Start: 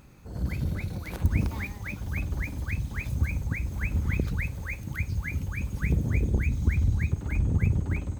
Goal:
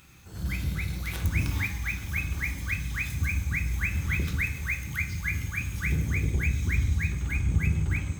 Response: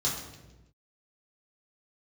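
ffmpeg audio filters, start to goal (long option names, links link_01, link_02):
-filter_complex "[0:a]tiltshelf=frequency=1200:gain=-8.5,asplit=2[link_01][link_02];[1:a]atrim=start_sample=2205,highshelf=frequency=5800:gain=-6[link_03];[link_02][link_03]afir=irnorm=-1:irlink=0,volume=-9dB[link_04];[link_01][link_04]amix=inputs=2:normalize=0"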